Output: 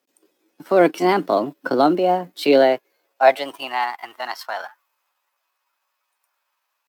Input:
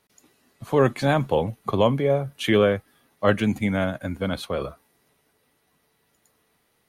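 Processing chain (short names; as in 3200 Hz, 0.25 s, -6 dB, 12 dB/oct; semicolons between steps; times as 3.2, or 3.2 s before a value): G.711 law mismatch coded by A; high-pass sweep 240 Hz -> 780 Hz, 2.44–3.86; pitch shift +4.5 st; gain +1.5 dB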